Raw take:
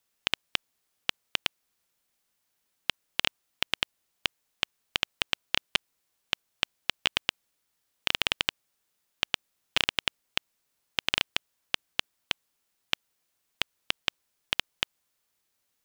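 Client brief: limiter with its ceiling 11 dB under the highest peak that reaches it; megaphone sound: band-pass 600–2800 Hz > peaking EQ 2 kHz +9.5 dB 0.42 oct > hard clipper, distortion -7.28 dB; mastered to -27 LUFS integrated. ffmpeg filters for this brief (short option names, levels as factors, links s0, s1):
-af "alimiter=limit=0.188:level=0:latency=1,highpass=600,lowpass=2800,equalizer=f=2000:t=o:w=0.42:g=9.5,asoftclip=type=hard:threshold=0.0531,volume=10.6"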